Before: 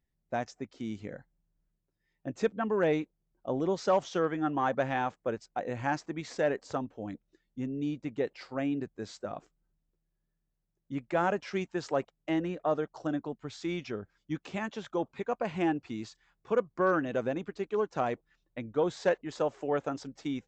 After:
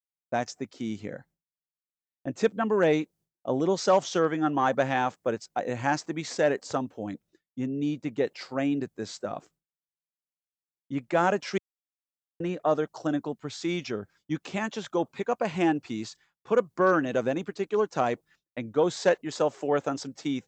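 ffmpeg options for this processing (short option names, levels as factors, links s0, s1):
-filter_complex "[0:a]asplit=3[s0][s1][s2];[s0]atrim=end=11.58,asetpts=PTS-STARTPTS,afade=t=out:st=11.576:d=0.004:c=hsin[s3];[s1]atrim=start=11.58:end=12.4,asetpts=PTS-STARTPTS,volume=0[s4];[s2]atrim=start=12.4,asetpts=PTS-STARTPTS,afade=t=in:d=0.004:c=hsin[s5];[s3][s4][s5]concat=n=3:v=0:a=1,highpass=97,agate=range=0.0224:threshold=0.00126:ratio=3:detection=peak,adynamicequalizer=threshold=0.00282:dfrequency=3900:dqfactor=0.7:tfrequency=3900:tqfactor=0.7:attack=5:release=100:ratio=0.375:range=3.5:mode=boostabove:tftype=highshelf,volume=1.68"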